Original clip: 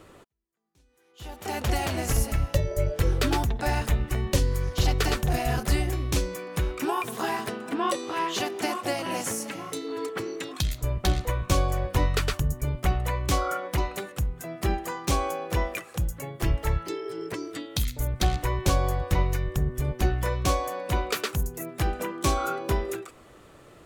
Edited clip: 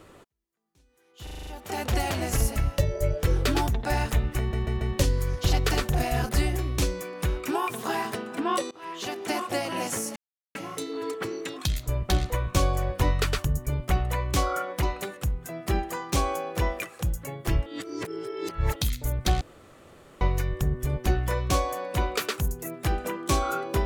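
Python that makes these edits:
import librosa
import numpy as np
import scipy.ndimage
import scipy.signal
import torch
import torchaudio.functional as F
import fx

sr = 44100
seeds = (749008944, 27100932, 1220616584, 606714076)

y = fx.edit(x, sr, fx.stutter(start_s=1.23, slice_s=0.04, count=7),
    fx.stutter(start_s=4.15, slice_s=0.14, count=4),
    fx.fade_in_from(start_s=8.05, length_s=0.65, floor_db=-23.0),
    fx.insert_silence(at_s=9.5, length_s=0.39),
    fx.reverse_span(start_s=16.61, length_s=1.1),
    fx.room_tone_fill(start_s=18.36, length_s=0.8), tone=tone)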